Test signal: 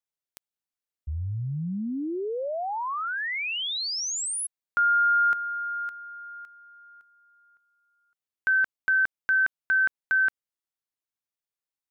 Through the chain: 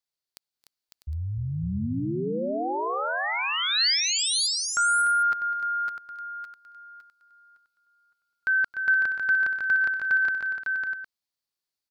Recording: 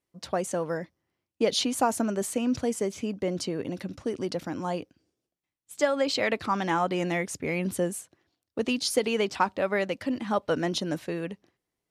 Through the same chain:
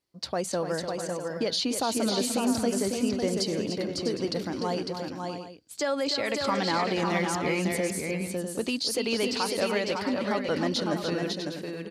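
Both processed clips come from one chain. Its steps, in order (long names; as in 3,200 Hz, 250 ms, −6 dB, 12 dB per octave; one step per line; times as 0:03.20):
parametric band 4,500 Hz +10.5 dB 0.44 octaves
brickwall limiter −19 dBFS
on a send: multi-tap delay 269/297/552/649/760 ms −18.5/−8.5/−4.5/−10/−15 dB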